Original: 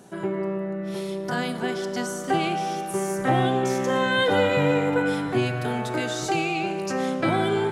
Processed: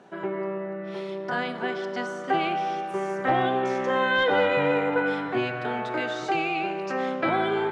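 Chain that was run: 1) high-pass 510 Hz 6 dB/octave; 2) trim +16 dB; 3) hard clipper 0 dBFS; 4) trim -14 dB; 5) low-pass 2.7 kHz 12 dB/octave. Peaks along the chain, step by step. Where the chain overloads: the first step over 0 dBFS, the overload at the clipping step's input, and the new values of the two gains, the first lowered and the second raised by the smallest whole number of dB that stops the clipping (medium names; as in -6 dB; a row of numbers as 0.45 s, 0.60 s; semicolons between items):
-12.0 dBFS, +4.0 dBFS, 0.0 dBFS, -14.0 dBFS, -13.5 dBFS; step 2, 4.0 dB; step 2 +12 dB, step 4 -10 dB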